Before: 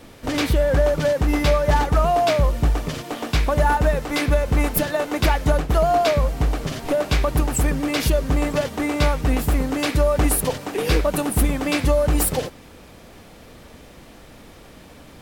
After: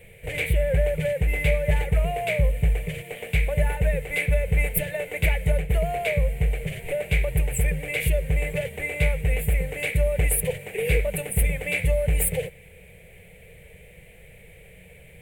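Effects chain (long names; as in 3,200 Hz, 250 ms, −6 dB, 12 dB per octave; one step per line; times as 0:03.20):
drawn EQ curve 180 Hz 0 dB, 270 Hz −27 dB, 460 Hz +2 dB, 1,200 Hz −23 dB, 2,200 Hz +8 dB, 5,400 Hz −24 dB, 8,400 Hz 0 dB
level −2 dB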